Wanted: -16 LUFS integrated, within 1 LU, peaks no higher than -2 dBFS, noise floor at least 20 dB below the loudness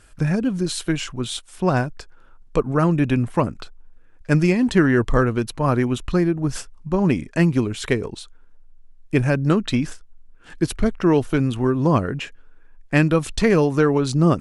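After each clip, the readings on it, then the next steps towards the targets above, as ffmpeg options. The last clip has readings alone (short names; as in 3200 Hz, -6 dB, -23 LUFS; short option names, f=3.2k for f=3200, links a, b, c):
loudness -21.0 LUFS; peak -2.5 dBFS; loudness target -16.0 LUFS
-> -af "volume=5dB,alimiter=limit=-2dB:level=0:latency=1"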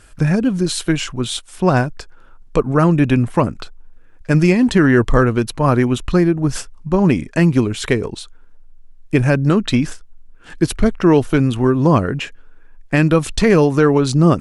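loudness -16.0 LUFS; peak -2.0 dBFS; noise floor -43 dBFS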